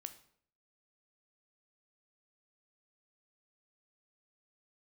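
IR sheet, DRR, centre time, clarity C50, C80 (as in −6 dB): 9.0 dB, 7 ms, 13.0 dB, 17.0 dB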